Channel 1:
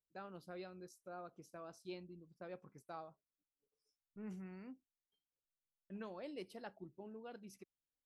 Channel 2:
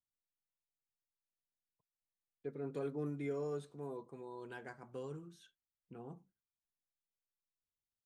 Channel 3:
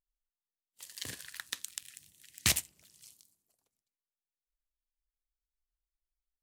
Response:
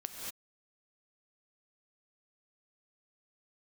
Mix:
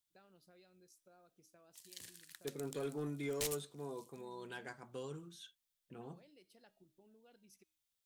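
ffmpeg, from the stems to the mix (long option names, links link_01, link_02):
-filter_complex "[0:a]equalizer=frequency=1100:width_type=o:width=0.77:gain=-6,bandreject=frequency=315:width_type=h:width=4,bandreject=frequency=630:width_type=h:width=4,bandreject=frequency=945:width_type=h:width=4,bandreject=frequency=1260:width_type=h:width=4,bandreject=frequency=1575:width_type=h:width=4,bandreject=frequency=1890:width_type=h:width=4,bandreject=frequency=2205:width_type=h:width=4,bandreject=frequency=2520:width_type=h:width=4,bandreject=frequency=2835:width_type=h:width=4,bandreject=frequency=3150:width_type=h:width=4,bandreject=frequency=3465:width_type=h:width=4,bandreject=frequency=3780:width_type=h:width=4,bandreject=frequency=4095:width_type=h:width=4,bandreject=frequency=4410:width_type=h:width=4,bandreject=frequency=4725:width_type=h:width=4,bandreject=frequency=5040:width_type=h:width=4,bandreject=frequency=5355:width_type=h:width=4,bandreject=frequency=5670:width_type=h:width=4,bandreject=frequency=5985:width_type=h:width=4,bandreject=frequency=6300:width_type=h:width=4,bandreject=frequency=6615:width_type=h:width=4,bandreject=frequency=6930:width_type=h:width=4,bandreject=frequency=7245:width_type=h:width=4,bandreject=frequency=7560:width_type=h:width=4,bandreject=frequency=7875:width_type=h:width=4,bandreject=frequency=8190:width_type=h:width=4,bandreject=frequency=8505:width_type=h:width=4,bandreject=frequency=8820:width_type=h:width=4,bandreject=frequency=9135:width_type=h:width=4,bandreject=frequency=9450:width_type=h:width=4,acompressor=threshold=-53dB:ratio=6,volume=-10dB[link_01];[1:a]equalizer=frequency=3500:width=4.8:gain=6,volume=-1dB[link_02];[2:a]adelay=950,volume=-18.5dB[link_03];[link_01][link_02][link_03]amix=inputs=3:normalize=0,highshelf=frequency=2300:gain=9.5,aeval=exprs='clip(val(0),-1,0.02)':channel_layout=same"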